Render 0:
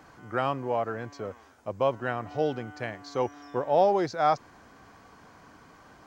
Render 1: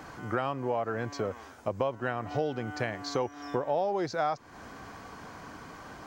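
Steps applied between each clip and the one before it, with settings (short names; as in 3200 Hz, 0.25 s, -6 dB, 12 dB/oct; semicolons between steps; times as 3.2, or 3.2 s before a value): compressor 5:1, threshold -35 dBFS, peak gain reduction 16.5 dB; gain +7.5 dB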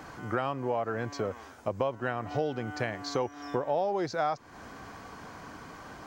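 nothing audible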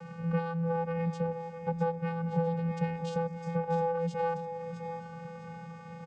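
one diode to ground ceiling -31.5 dBFS; vocoder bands 8, square 167 Hz; feedback echo 0.655 s, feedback 35%, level -9.5 dB; gain +4 dB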